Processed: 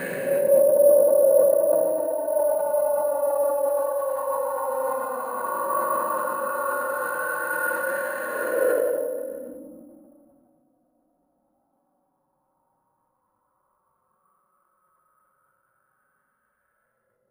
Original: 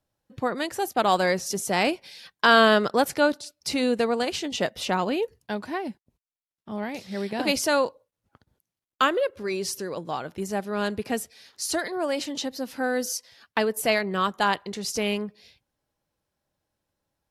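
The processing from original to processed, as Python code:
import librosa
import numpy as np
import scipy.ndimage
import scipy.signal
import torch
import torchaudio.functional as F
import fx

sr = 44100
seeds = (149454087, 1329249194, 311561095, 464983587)

p1 = fx.spec_steps(x, sr, hold_ms=400)
p2 = fx.high_shelf(p1, sr, hz=2500.0, db=8.5)
p3 = fx.hum_notches(p2, sr, base_hz=50, count=6)
p4 = p3 + 0.94 * np.pad(p3, (int(5.4 * sr / 1000.0), 0))[:len(p3)]
p5 = fx.filter_lfo_lowpass(p4, sr, shape='saw_up', hz=2.5, low_hz=500.0, high_hz=1700.0, q=7.1)
p6 = fx.paulstretch(p5, sr, seeds[0], factor=21.0, window_s=0.05, from_s=7.59)
p7 = p6 + fx.echo_feedback(p6, sr, ms=155, feedback_pct=52, wet_db=-19.5, dry=0)
p8 = np.repeat(scipy.signal.resample_poly(p7, 1, 4), 4)[:len(p7)]
p9 = fx.sustainer(p8, sr, db_per_s=24.0)
y = F.gain(torch.from_numpy(p9), -6.5).numpy()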